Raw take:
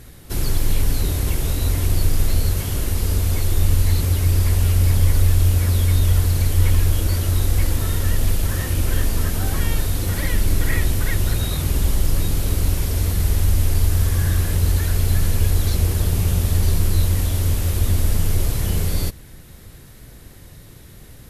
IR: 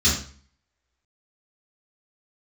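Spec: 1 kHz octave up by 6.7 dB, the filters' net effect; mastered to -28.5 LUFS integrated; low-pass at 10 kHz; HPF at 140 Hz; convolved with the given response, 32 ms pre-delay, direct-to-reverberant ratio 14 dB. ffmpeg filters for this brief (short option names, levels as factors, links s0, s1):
-filter_complex "[0:a]highpass=140,lowpass=10000,equalizer=f=1000:t=o:g=8.5,asplit=2[s0][s1];[1:a]atrim=start_sample=2205,adelay=32[s2];[s1][s2]afir=irnorm=-1:irlink=0,volume=0.0355[s3];[s0][s3]amix=inputs=2:normalize=0,volume=0.631"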